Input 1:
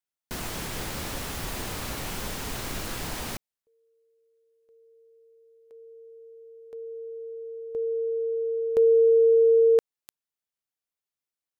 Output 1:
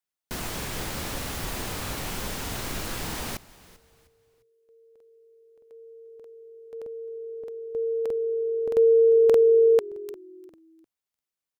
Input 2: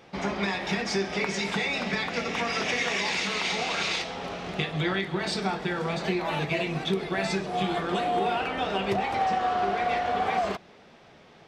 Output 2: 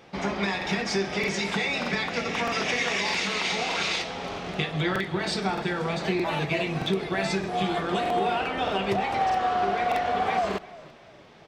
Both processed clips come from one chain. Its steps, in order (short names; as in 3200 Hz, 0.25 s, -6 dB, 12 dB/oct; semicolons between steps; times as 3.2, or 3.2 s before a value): frequency-shifting echo 0.351 s, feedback 33%, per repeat -44 Hz, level -20 dB; crackling interface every 0.62 s, samples 2048, repeat, from 0.57; gain +1 dB